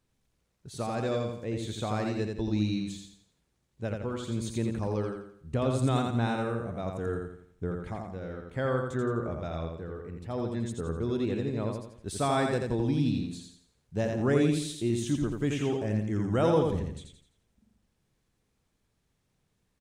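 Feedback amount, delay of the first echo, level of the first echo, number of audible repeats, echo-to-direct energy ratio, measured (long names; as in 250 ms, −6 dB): 40%, 85 ms, −4.0 dB, 4, −3.0 dB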